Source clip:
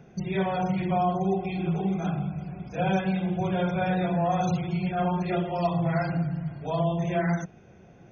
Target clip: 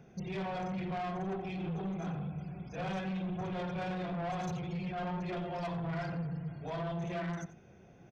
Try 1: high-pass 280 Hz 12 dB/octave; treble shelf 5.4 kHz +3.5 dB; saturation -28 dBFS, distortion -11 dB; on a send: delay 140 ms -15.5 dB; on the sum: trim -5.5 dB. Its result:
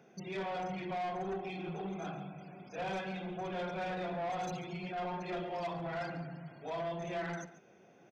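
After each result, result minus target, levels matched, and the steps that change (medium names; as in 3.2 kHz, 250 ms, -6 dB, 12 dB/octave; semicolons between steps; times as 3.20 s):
echo 50 ms late; 250 Hz band -3.5 dB
change: delay 90 ms -15.5 dB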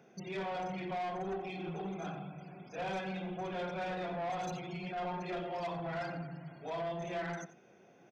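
250 Hz band -3.5 dB
remove: high-pass 280 Hz 12 dB/octave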